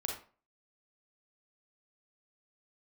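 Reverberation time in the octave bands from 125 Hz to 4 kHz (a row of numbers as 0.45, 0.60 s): 0.40, 0.40, 0.40, 0.40, 0.35, 0.25 s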